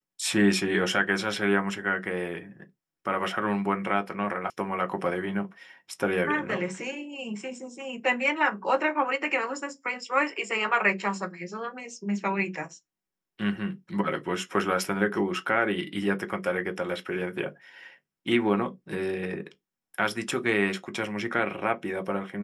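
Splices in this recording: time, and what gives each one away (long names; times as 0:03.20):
0:04.50: cut off before it has died away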